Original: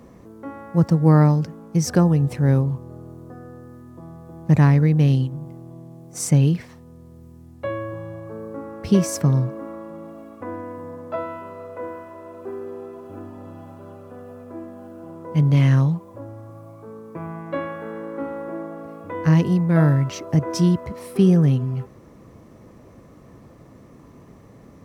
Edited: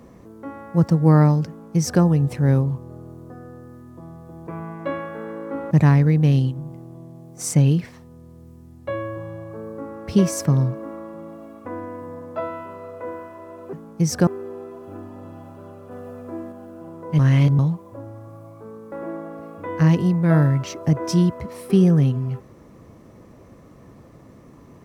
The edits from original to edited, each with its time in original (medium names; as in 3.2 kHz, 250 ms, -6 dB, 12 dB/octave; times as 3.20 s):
1.48–2.02 s: copy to 12.49 s
14.13–14.74 s: gain +3 dB
15.41–15.81 s: reverse
17.14–18.38 s: move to 4.47 s